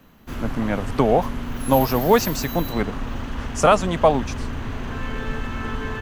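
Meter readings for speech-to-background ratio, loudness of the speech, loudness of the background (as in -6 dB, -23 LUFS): 9.5 dB, -21.0 LUFS, -30.5 LUFS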